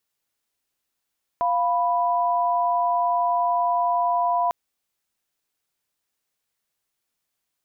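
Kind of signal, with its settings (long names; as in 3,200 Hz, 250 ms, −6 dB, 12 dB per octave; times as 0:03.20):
held notes F5/B5 sine, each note −21.5 dBFS 3.10 s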